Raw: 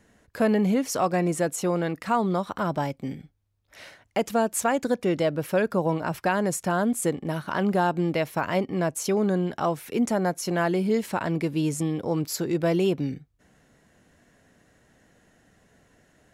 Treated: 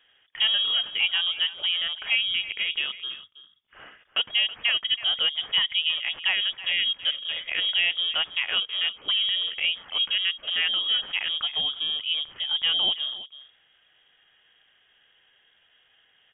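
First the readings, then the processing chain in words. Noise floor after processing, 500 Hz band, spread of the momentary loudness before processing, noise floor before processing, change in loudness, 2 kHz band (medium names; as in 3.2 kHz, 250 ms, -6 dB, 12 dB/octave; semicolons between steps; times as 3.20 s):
-64 dBFS, -23.5 dB, 5 LU, -64 dBFS, +2.0 dB, +6.0 dB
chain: Bessel high-pass 220 Hz; on a send: delay 325 ms -15.5 dB; on the sum: frequency inversion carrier 3.5 kHz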